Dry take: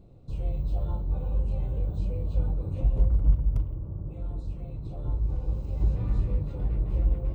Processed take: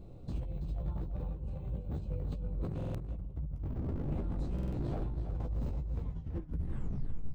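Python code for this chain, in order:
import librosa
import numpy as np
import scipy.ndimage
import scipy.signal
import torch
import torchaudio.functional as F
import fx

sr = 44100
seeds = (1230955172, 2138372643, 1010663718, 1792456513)

p1 = fx.tape_stop_end(x, sr, length_s=1.44)
p2 = fx.dynamic_eq(p1, sr, hz=160.0, q=1.2, threshold_db=-44.0, ratio=4.0, max_db=5)
p3 = fx.over_compress(p2, sr, threshold_db=-33.0, ratio=-1.0)
p4 = 10.0 ** (-27.0 / 20.0) * (np.abs((p3 / 10.0 ** (-27.0 / 20.0) + 3.0) % 4.0 - 2.0) - 1.0)
p5 = fx.chorus_voices(p4, sr, voices=4, hz=0.49, base_ms=15, depth_ms=3.1, mix_pct=35)
p6 = p5 + fx.echo_single(p5, sr, ms=330, db=-9.0, dry=0)
y = fx.buffer_glitch(p6, sr, at_s=(2.76, 4.54), block=2048, repeats=3)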